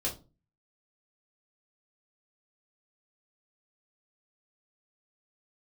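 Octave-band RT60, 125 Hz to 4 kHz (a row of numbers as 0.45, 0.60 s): 0.50, 0.45, 0.35, 0.30, 0.20, 0.20 s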